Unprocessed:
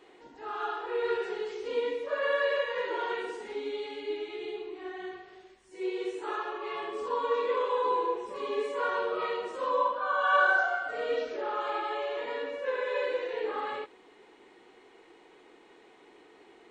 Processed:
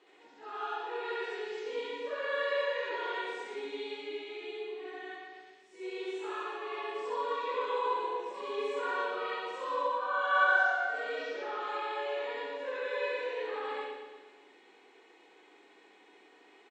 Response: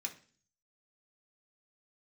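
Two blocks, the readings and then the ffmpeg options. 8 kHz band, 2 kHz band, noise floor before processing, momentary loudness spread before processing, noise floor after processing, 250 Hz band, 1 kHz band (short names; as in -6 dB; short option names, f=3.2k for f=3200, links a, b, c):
n/a, -1.0 dB, -58 dBFS, 10 LU, -61 dBFS, -5.5 dB, -2.5 dB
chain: -filter_complex "[0:a]highpass=280,lowpass=5k,aemphasis=mode=production:type=cd,aecho=1:1:116|232|348|464|580|696|812:0.422|0.236|0.132|0.0741|0.0415|0.0232|0.013,asplit=2[a][b];[1:a]atrim=start_sample=2205,adelay=67[c];[b][c]afir=irnorm=-1:irlink=0,volume=3dB[d];[a][d]amix=inputs=2:normalize=0,volume=-7dB"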